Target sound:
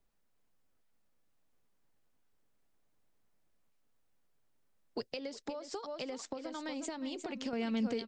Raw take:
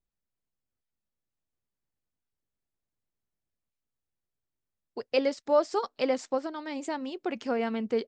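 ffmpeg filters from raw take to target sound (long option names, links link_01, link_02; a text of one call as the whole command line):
ffmpeg -i in.wav -filter_complex "[0:a]equalizer=frequency=69:width_type=o:width=2.3:gain=-10.5,bandreject=frequency=360:width=12,aecho=1:1:359:0.266,alimiter=level_in=0.5dB:limit=-24dB:level=0:latency=1:release=298,volume=-0.5dB,asettb=1/sr,asplit=3[link_01][link_02][link_03];[link_01]atrim=end=5.044[link_04];[link_02]atrim=start=5.04:end=7.53,asetpts=PTS-STARTPTS,afade=type=in:duration=0.004:curve=qsin,afade=type=out:start_time=2.486:duration=0.004:curve=qsin,acompressor=threshold=-39dB:ratio=6[link_05];[link_03]atrim=start=7.526[link_06];[link_04][link_05]acrossfade=duration=0.004:curve1=hsin:curve2=qsin[link_07];[link_07][link_06]acrossfade=duration=0.004:curve1=qsin:curve2=hsin,highshelf=frequency=2100:gain=-8,acrossover=split=180|3000[link_08][link_09][link_10];[link_09]acompressor=threshold=-58dB:ratio=3[link_11];[link_08][link_11][link_10]amix=inputs=3:normalize=0,volume=13.5dB" out.wav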